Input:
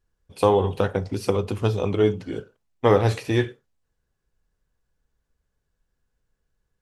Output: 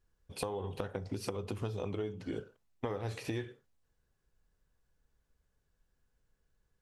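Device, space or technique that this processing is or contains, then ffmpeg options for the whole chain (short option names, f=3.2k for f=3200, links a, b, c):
serial compression, peaks first: -af "acompressor=threshold=-27dB:ratio=6,acompressor=threshold=-36dB:ratio=2,volume=-1.5dB"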